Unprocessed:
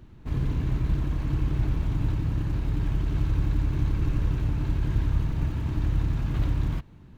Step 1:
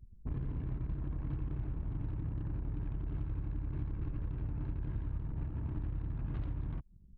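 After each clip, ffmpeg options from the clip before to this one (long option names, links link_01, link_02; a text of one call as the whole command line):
ffmpeg -i in.wav -af "anlmdn=1.58,acompressor=threshold=-32dB:ratio=6,volume=-2dB" out.wav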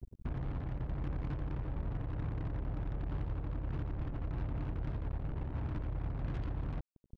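ffmpeg -i in.wav -af "alimiter=level_in=12dB:limit=-24dB:level=0:latency=1:release=365,volume=-12dB,aeval=exprs='val(0)+0.000316*(sin(2*PI*60*n/s)+sin(2*PI*2*60*n/s)/2+sin(2*PI*3*60*n/s)/3+sin(2*PI*4*60*n/s)/4+sin(2*PI*5*60*n/s)/5)':channel_layout=same,acrusher=bits=7:mix=0:aa=0.5,volume=6.5dB" out.wav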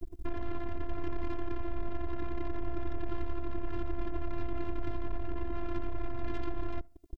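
ffmpeg -i in.wav -filter_complex "[0:a]asplit=2[link_01][link_02];[link_02]alimiter=level_in=17.5dB:limit=-24dB:level=0:latency=1:release=158,volume=-17.5dB,volume=1dB[link_03];[link_01][link_03]amix=inputs=2:normalize=0,afftfilt=real='hypot(re,im)*cos(PI*b)':imag='0':win_size=512:overlap=0.75,asplit=2[link_04][link_05];[link_05]adelay=71,lowpass=frequency=900:poles=1,volume=-23dB,asplit=2[link_06][link_07];[link_07]adelay=71,lowpass=frequency=900:poles=1,volume=0.43,asplit=2[link_08][link_09];[link_09]adelay=71,lowpass=frequency=900:poles=1,volume=0.43[link_10];[link_04][link_06][link_08][link_10]amix=inputs=4:normalize=0,volume=7.5dB" out.wav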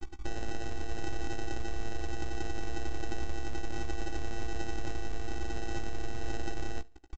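ffmpeg -i in.wav -filter_complex "[0:a]aresample=16000,acrusher=samples=14:mix=1:aa=0.000001,aresample=44100,asplit=2[link_01][link_02];[link_02]adelay=16,volume=-9.5dB[link_03];[link_01][link_03]amix=inputs=2:normalize=0" out.wav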